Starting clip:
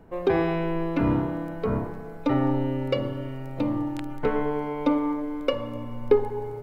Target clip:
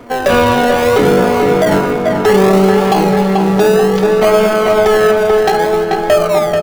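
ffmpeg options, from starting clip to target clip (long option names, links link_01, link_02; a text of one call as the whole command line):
ffmpeg -i in.wav -filter_complex "[0:a]highpass=frequency=110:poles=1,bandreject=frequency=60:width_type=h:width=6,bandreject=frequency=120:width_type=h:width=6,bandreject=frequency=180:width_type=h:width=6,bandreject=frequency=240:width_type=h:width=6,aresample=11025,asoftclip=type=tanh:threshold=-19dB,aresample=44100,flanger=delay=5.7:depth=3.7:regen=48:speed=0.5:shape=triangular,asetrate=64194,aresample=44100,atempo=0.686977,asplit=2[link_01][link_02];[link_02]acrusher=samples=32:mix=1:aa=0.000001:lfo=1:lforange=19.2:lforate=0.62,volume=-6.5dB[link_03];[link_01][link_03]amix=inputs=2:normalize=0,asplit=2[link_04][link_05];[link_05]adelay=436,lowpass=frequency=3000:poles=1,volume=-5.5dB,asplit=2[link_06][link_07];[link_07]adelay=436,lowpass=frequency=3000:poles=1,volume=0.53,asplit=2[link_08][link_09];[link_09]adelay=436,lowpass=frequency=3000:poles=1,volume=0.53,asplit=2[link_10][link_11];[link_11]adelay=436,lowpass=frequency=3000:poles=1,volume=0.53,asplit=2[link_12][link_13];[link_13]adelay=436,lowpass=frequency=3000:poles=1,volume=0.53,asplit=2[link_14][link_15];[link_15]adelay=436,lowpass=frequency=3000:poles=1,volume=0.53,asplit=2[link_16][link_17];[link_17]adelay=436,lowpass=frequency=3000:poles=1,volume=0.53[link_18];[link_04][link_06][link_08][link_10][link_12][link_14][link_16][link_18]amix=inputs=8:normalize=0,alimiter=level_in=21.5dB:limit=-1dB:release=50:level=0:latency=1,volume=-1dB" out.wav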